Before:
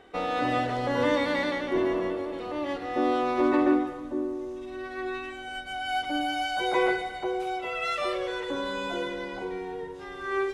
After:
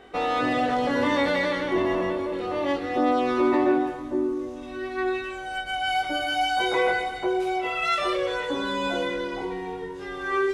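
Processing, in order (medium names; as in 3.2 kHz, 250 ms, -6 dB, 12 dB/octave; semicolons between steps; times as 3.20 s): chorus 0.26 Hz, delay 19 ms, depth 3.5 ms; in parallel at +3 dB: peak limiter -24 dBFS, peak gain reduction 9.5 dB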